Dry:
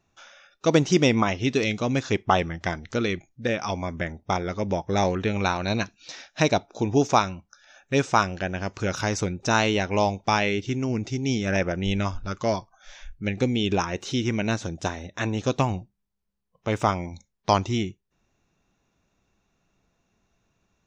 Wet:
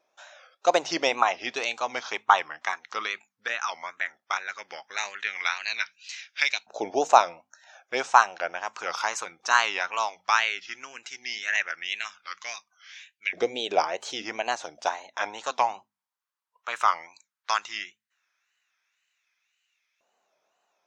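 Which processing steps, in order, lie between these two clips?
mains-hum notches 50/100/150/200/250 Hz
auto-filter high-pass saw up 0.15 Hz 580–2,400 Hz
tape wow and flutter 150 cents
level −1.5 dB

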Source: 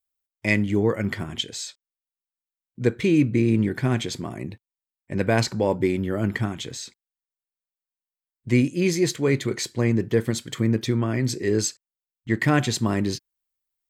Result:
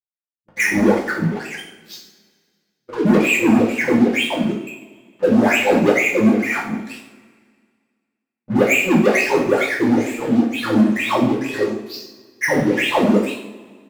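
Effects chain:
every frequency bin delayed by itself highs late, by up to 483 ms
high-shelf EQ 2,600 Hz +9.5 dB
mains-hum notches 60/120/180/240/300/360/420/480 Hz
on a send: single-tap delay 104 ms −22 dB
on the sum: LFO wah 2.2 Hz 210–2,700 Hz, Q 21
leveller curve on the samples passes 5
parametric band 280 Hz +5.5 dB 2.6 octaves
coupled-rooms reverb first 0.55 s, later 1.9 s, from −18 dB, DRR −5.5 dB
level +3.5 dB

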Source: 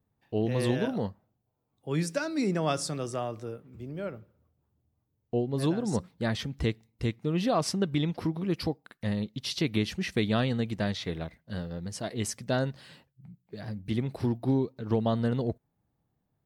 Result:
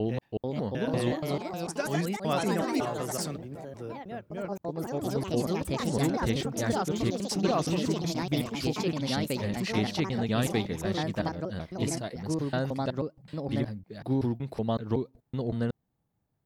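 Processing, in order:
slices reordered back to front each 187 ms, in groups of 3
delay with pitch and tempo change per echo 437 ms, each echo +3 semitones, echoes 3
level −1.5 dB

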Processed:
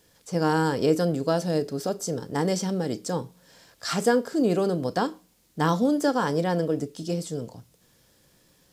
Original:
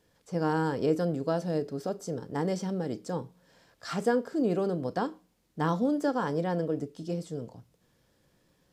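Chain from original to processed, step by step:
high-shelf EQ 3,400 Hz +10 dB
level +4.5 dB

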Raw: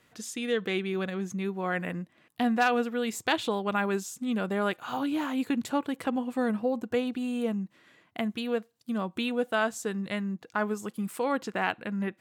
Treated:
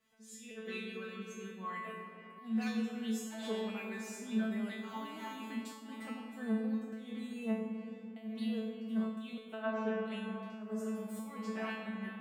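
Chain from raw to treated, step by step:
0:09.53–0:10.04: low-pass filter 3,600 Hz 24 dB per octave
convolution reverb RT60 4.3 s, pre-delay 20 ms, DRR 4 dB
volume swells 206 ms
tuned comb filter 220 Hz, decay 0.62 s, harmonics all, mix 100%
level +6.5 dB

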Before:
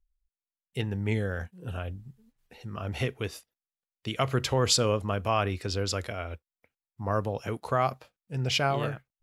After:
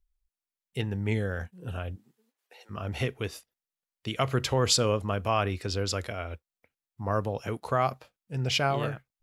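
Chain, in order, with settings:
0:01.95–0:02.69: high-pass filter 230 Hz → 530 Hz 24 dB per octave

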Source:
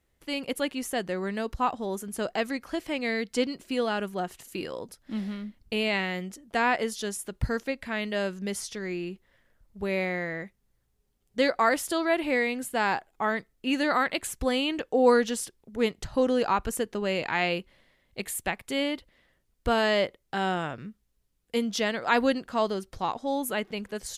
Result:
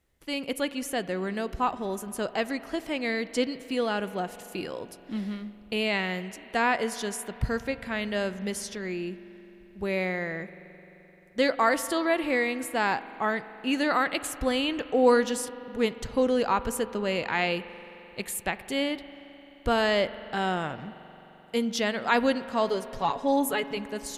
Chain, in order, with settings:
0:22.68–0:23.77: comb filter 7.1 ms, depth 78%
spring reverb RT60 3.9 s, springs 43 ms, chirp 30 ms, DRR 14 dB

